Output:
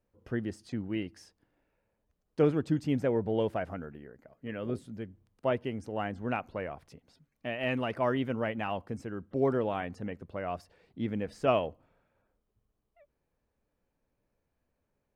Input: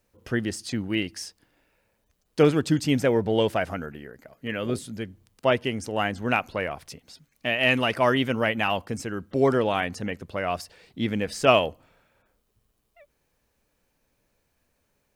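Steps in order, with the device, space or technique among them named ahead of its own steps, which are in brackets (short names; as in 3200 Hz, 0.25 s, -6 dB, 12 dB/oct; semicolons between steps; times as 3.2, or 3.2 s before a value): through cloth (high shelf 2200 Hz -15 dB); gain -6 dB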